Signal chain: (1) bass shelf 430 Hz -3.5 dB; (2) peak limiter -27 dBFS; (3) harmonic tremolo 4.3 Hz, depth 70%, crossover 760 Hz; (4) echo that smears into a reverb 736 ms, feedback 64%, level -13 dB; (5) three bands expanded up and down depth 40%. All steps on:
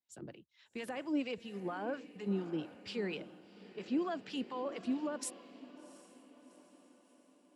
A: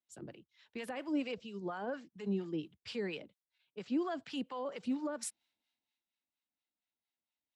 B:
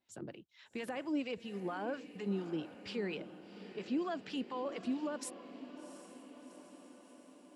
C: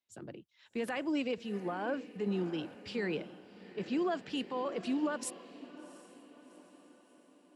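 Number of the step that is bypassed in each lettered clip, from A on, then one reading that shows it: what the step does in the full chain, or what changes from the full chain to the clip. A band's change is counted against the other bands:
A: 4, momentary loudness spread change -3 LU; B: 5, 8 kHz band -2.5 dB; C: 3, 8 kHz band -2.5 dB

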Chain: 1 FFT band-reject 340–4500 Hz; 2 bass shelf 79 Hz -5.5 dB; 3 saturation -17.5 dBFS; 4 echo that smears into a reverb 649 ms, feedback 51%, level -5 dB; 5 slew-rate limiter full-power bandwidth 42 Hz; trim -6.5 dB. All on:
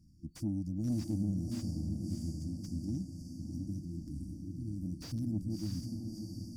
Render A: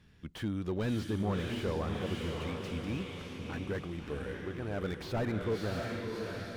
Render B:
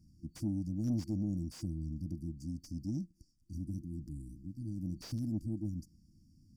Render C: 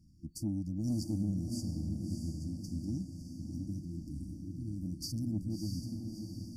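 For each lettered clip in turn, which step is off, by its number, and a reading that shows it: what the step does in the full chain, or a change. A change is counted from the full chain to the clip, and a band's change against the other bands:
1, 500 Hz band +17.0 dB; 4, momentary loudness spread change +3 LU; 5, distortion -21 dB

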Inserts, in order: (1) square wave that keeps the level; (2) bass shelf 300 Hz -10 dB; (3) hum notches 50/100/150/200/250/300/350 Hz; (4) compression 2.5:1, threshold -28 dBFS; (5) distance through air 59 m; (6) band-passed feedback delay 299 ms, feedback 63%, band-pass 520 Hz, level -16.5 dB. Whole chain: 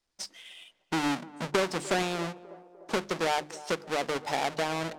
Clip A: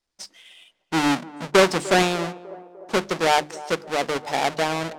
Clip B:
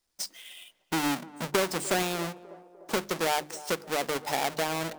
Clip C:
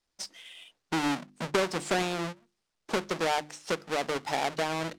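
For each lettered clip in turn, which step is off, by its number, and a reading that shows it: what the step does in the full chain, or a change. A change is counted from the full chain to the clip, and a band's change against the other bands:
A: 4, mean gain reduction 5.5 dB; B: 5, 8 kHz band +5.5 dB; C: 6, echo-to-direct -19.5 dB to none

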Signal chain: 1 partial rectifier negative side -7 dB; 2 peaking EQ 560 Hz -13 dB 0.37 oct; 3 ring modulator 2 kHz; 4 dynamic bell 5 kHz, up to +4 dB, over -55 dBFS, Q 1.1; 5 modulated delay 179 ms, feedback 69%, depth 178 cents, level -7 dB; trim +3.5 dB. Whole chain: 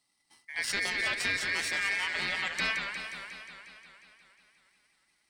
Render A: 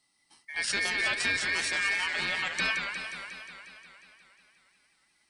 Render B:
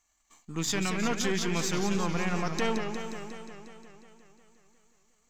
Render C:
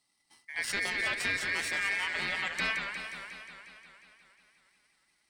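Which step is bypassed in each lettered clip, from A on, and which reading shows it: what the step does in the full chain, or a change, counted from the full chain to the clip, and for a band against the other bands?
1, distortion -9 dB; 3, 2 kHz band -16.5 dB; 4, 4 kHz band -2.5 dB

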